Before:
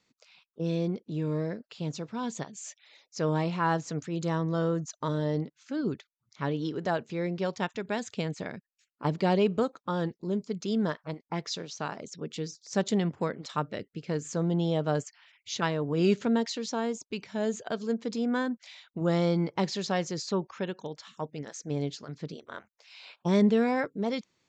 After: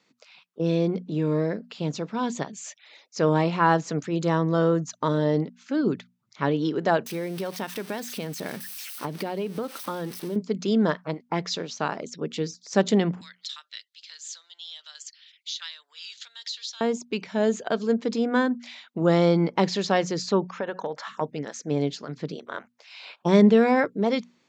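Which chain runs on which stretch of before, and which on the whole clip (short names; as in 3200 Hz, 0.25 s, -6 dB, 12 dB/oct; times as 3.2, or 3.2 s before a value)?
7.06–10.36 switching spikes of -29.5 dBFS + compressor, threshold -33 dBFS + notch 7000 Hz, Q 5.1
13.21–16.81 resonant high shelf 2900 Hz +9 dB, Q 3 + compressor 4:1, threshold -27 dBFS + ladder high-pass 1700 Hz, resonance 50%
20.6–21.21 band shelf 950 Hz +10.5 dB 2.3 oct + compressor, threshold -33 dBFS
whole clip: HPF 160 Hz; high shelf 6300 Hz -8.5 dB; notches 60/120/180/240 Hz; gain +7.5 dB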